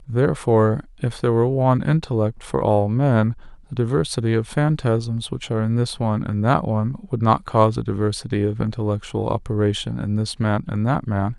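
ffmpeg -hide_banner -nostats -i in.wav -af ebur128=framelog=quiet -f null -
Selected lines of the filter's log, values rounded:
Integrated loudness:
  I:         -21.1 LUFS
  Threshold: -31.1 LUFS
Loudness range:
  LRA:         2.8 LU
  Threshold: -41.2 LUFS
  LRA low:   -22.5 LUFS
  LRA high:  -19.7 LUFS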